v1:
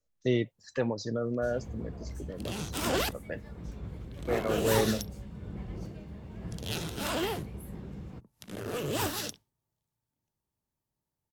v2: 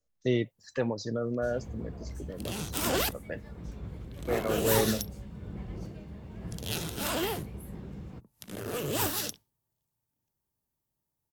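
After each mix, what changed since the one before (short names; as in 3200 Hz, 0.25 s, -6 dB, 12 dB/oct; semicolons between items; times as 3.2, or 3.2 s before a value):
second sound: add high shelf 9700 Hz +10 dB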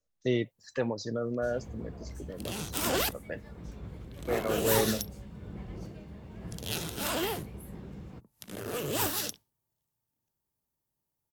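master: add low shelf 220 Hz -3 dB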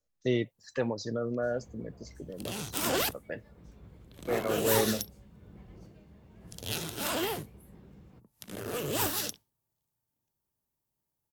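first sound -9.5 dB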